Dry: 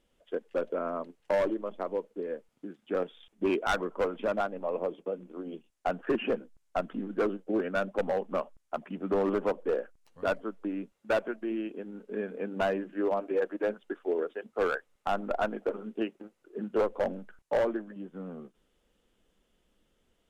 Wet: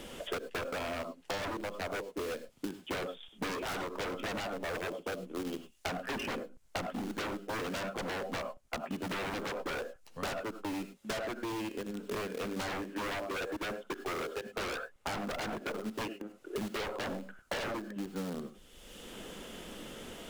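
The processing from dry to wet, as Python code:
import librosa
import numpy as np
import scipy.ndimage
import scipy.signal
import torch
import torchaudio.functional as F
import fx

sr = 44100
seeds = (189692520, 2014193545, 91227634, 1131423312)

p1 = fx.quant_dither(x, sr, seeds[0], bits=6, dither='none')
p2 = x + F.gain(torch.from_numpy(p1), -11.0).numpy()
p3 = fx.rev_gated(p2, sr, seeds[1], gate_ms=120, shape='rising', drr_db=11.5)
p4 = 10.0 ** (-29.5 / 20.0) * (np.abs((p3 / 10.0 ** (-29.5 / 20.0) + 3.0) % 4.0 - 2.0) - 1.0)
p5 = fx.band_squash(p4, sr, depth_pct=100)
y = F.gain(torch.from_numpy(p5), -2.0).numpy()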